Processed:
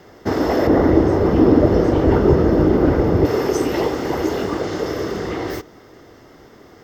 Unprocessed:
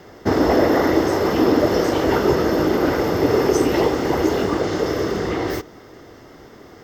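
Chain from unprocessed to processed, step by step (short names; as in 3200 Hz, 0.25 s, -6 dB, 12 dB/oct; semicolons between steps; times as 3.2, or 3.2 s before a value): 0.67–3.25 tilt -3.5 dB/oct; gain -2 dB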